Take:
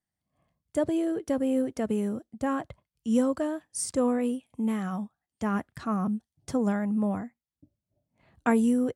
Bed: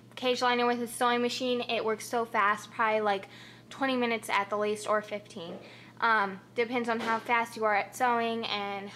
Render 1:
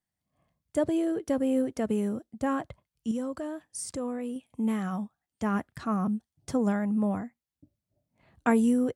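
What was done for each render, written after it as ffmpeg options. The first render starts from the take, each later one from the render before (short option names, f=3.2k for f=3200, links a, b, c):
-filter_complex "[0:a]asettb=1/sr,asplit=3[a][b][c];[a]atrim=end=3.114[d];[b]atrim=start=3.11:end=4.36,asetpts=PTS-STARTPTS,afade=t=in:d=0.004:c=qsin,afade=t=out:st=1.246:d=0.004:c=qsin,acompressor=threshold=-36dB:ratio=2:attack=3.2:release=140:knee=1:detection=peak[e];[c]atrim=start=4.356[f];[d][e]acrossfade=d=0.004:c1=hsin:c2=qsin[g];[g][f]acrossfade=d=0.004:c1=qsin:c2=hsin"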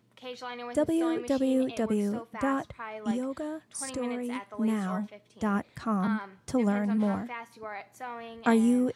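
-filter_complex "[1:a]volume=-12.5dB[a];[0:a][a]amix=inputs=2:normalize=0"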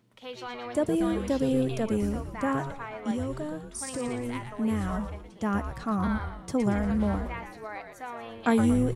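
-filter_complex "[0:a]asplit=6[a][b][c][d][e][f];[b]adelay=116,afreqshift=-130,volume=-7.5dB[g];[c]adelay=232,afreqshift=-260,volume=-14.4dB[h];[d]adelay=348,afreqshift=-390,volume=-21.4dB[i];[e]adelay=464,afreqshift=-520,volume=-28.3dB[j];[f]adelay=580,afreqshift=-650,volume=-35.2dB[k];[a][g][h][i][j][k]amix=inputs=6:normalize=0"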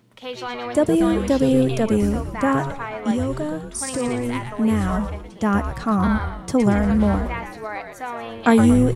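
-af "volume=8.5dB"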